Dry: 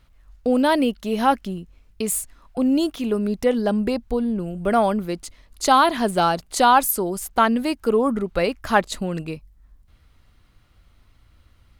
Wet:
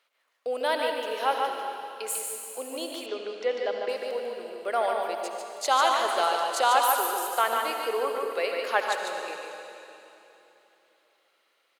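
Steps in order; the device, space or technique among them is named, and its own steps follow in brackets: PA in a hall (HPF 200 Hz; bell 2500 Hz +4 dB 1.4 oct; echo 0.147 s -5 dB; reverb RT60 3.1 s, pre-delay 63 ms, DRR 4 dB); 3.06–3.89 LPF 5700 Hz 24 dB/oct; Chebyshev high-pass 460 Hz, order 3; gain -7.5 dB

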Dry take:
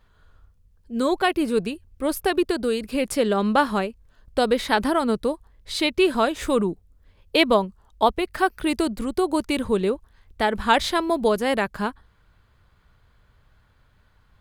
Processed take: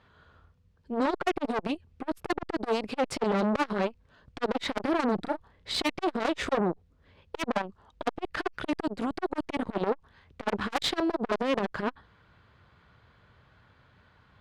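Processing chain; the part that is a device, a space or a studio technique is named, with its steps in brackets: valve radio (BPF 100–4200 Hz; tube stage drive 24 dB, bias 0.5; core saturation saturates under 620 Hz); 5.15–5.76 doubler 34 ms -7.5 dB; gain +6 dB

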